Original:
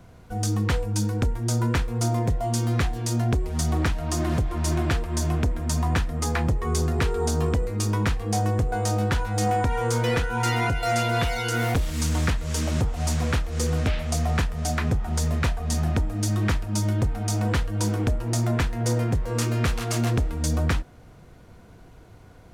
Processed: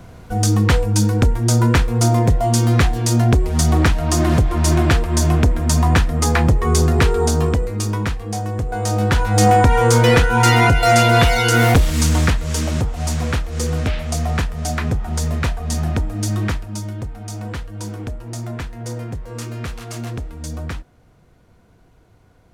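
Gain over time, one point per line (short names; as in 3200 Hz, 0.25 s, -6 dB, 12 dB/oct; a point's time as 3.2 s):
7.06 s +9 dB
8.47 s -1 dB
9.4 s +11 dB
11.72 s +11 dB
12.87 s +3.5 dB
16.4 s +3.5 dB
16.91 s -4.5 dB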